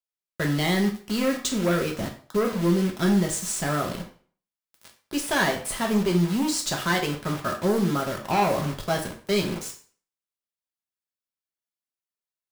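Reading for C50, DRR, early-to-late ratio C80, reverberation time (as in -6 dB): 9.5 dB, 1.0 dB, 14.0 dB, 0.45 s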